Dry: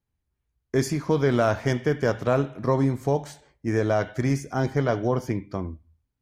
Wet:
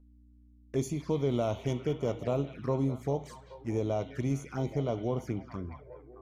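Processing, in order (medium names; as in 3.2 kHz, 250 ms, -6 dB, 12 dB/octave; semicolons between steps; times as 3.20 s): repeats whose band climbs or falls 206 ms, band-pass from 2.9 kHz, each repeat -0.7 oct, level -5.5 dB; hum 60 Hz, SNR 23 dB; touch-sensitive flanger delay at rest 4.2 ms, full sweep at -22 dBFS; trim -7 dB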